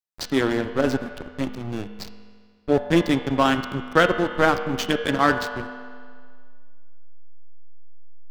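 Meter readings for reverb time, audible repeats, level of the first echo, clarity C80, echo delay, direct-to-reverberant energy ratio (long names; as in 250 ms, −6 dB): 1.9 s, no echo audible, no echo audible, 10.0 dB, no echo audible, 7.0 dB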